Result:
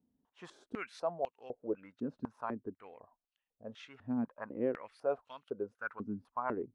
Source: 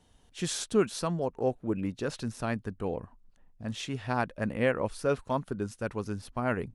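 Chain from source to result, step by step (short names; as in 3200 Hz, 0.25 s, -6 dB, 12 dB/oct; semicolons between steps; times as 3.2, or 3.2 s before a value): spectral noise reduction 6 dB; stepped band-pass 4 Hz 240–2900 Hz; gain +3.5 dB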